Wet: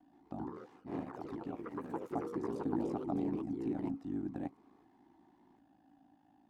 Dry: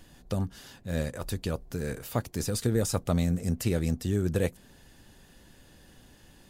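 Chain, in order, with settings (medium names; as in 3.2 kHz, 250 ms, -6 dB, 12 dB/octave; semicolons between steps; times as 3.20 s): ring modulator 27 Hz; two resonant band-passes 470 Hz, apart 1.4 oct; ever faster or slower copies 126 ms, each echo +3 st, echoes 3; trim +3.5 dB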